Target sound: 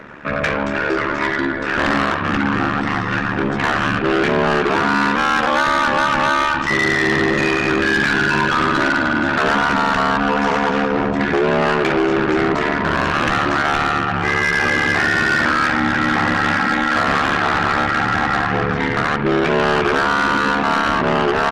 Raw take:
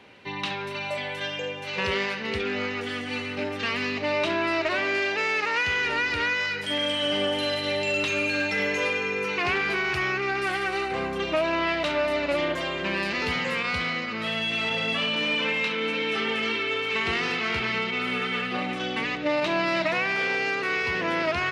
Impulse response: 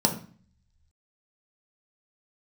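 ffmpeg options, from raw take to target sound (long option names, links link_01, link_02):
-af "lowshelf=frequency=220:gain=-5.5,aecho=1:1:81:0.075,asetrate=26990,aresample=44100,atempo=1.63392,apsyclip=20.5dB,aeval=exprs='val(0)*sin(2*PI*36*n/s)':channel_layout=same,asoftclip=type=tanh:threshold=-7dB,acontrast=33,volume=-8dB"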